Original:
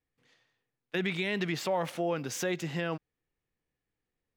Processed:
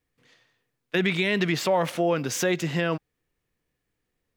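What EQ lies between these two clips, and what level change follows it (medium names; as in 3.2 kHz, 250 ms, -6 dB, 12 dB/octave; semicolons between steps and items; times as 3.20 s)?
band-stop 810 Hz, Q 14; +7.5 dB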